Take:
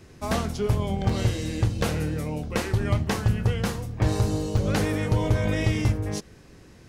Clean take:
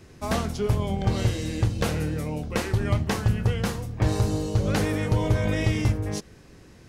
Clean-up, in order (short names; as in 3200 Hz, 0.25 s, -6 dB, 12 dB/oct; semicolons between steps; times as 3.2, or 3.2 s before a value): interpolate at 1.09/4.57/5.3, 3.9 ms